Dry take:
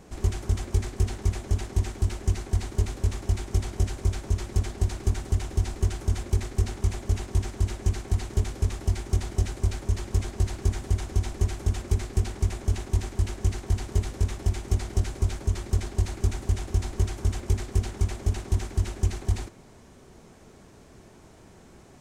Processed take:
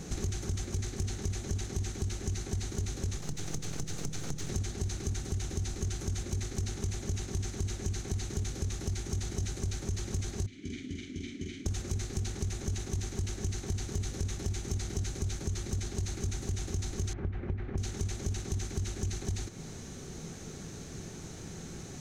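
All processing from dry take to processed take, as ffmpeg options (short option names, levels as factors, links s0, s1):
-filter_complex "[0:a]asettb=1/sr,asplit=3[s0][s1][s2];[s0]atrim=end=3.174[s3];[s1]atrim=start=3.17:end=4.5,asetpts=PTS-STARTPTS,afade=t=in:d=0.004:c=qsin,afade=t=out:st=1.326:d=0.004:c=qsin,acompressor=threshold=0.0251:ratio=4:attack=3.2:release=140:knee=1:detection=peak,aeval=exprs='abs(val(0))':c=same[s4];[s2]atrim=start=4.496[s5];[s3][s4]acrossfade=d=0.004:c1=hsin:c2=qsin[s6];[s6][s5]acrossfade=d=0.004:c1=qsin:c2=hsin,asettb=1/sr,asplit=3[s7][s8][s9];[s7]atrim=end=10.464[s10];[s8]atrim=start=10.46:end=11.66,asetpts=PTS-STARTPTS,afade=t=in:d=0.004:c=qsin,afade=t=out:st=1.196:d=0.004:c=qsin,asplit=3[s11][s12][s13];[s11]bandpass=f=270:t=q:w=8,volume=1[s14];[s12]bandpass=f=2290:t=q:w=8,volume=0.501[s15];[s13]bandpass=f=3010:t=q:w=8,volume=0.355[s16];[s14][s15][s16]amix=inputs=3:normalize=0,asplit=2[s17][s18];[s18]adelay=47,volume=0.708[s19];[s17][s19]amix=inputs=2:normalize=0,atrim=end_sample=52920[s20];[s9]atrim=start=11.656[s21];[s10][s20]acrossfade=d=0.004:c1=hsin:c2=qsin[s22];[s22][s21]acrossfade=d=0.004:c1=qsin:c2=hsin,asettb=1/sr,asplit=3[s23][s24][s25];[s23]atrim=end=17.134[s26];[s24]atrim=start=17.13:end=17.78,asetpts=PTS-STARTPTS,afade=t=in:d=0.004:c=qsin,afade=t=out:st=0.646:d=0.004:c=qsin,lowpass=f=2200:w=0.5412,lowpass=f=2200:w=1.3066,acompressor=threshold=0.0282:ratio=1.5:attack=3.2:release=140:knee=1:detection=peak[s27];[s25]atrim=start=17.776[s28];[s26][s27]acrossfade=d=0.004:c1=hsin:c2=qsin[s29];[s29][s28]acrossfade=d=0.004:c1=qsin:c2=hsin,equalizer=f=100:t=o:w=0.33:g=4,equalizer=f=160:t=o:w=0.33:g=8,equalizer=f=630:t=o:w=0.33:g=-7,equalizer=f=1000:t=o:w=0.33:g=-9,equalizer=f=4000:t=o:w=0.33:g=6,equalizer=f=6300:t=o:w=0.33:g=11,alimiter=limit=0.1:level=0:latency=1:release=14,acompressor=threshold=0.0141:ratio=6,volume=2"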